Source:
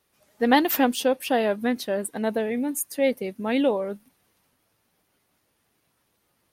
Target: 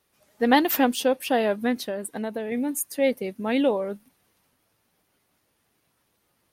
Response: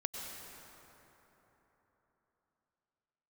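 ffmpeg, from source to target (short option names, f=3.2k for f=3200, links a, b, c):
-filter_complex "[0:a]asettb=1/sr,asplit=3[a][b][c];[a]atrim=end=1.874[d];[b]atrim=start=1.87:end=2.52,asetpts=PTS-STARTPTS,afade=t=in:d=0.004:c=qsin,afade=t=out:st=0.646:d=0.004:c=qsin,acompressor=threshold=-27dB:ratio=6[e];[c]atrim=start=2.516[f];[d][e]acrossfade=d=0.004:c1=hsin:c2=qsin[g];[g][f]acrossfade=d=0.004:c1=qsin:c2=hsin"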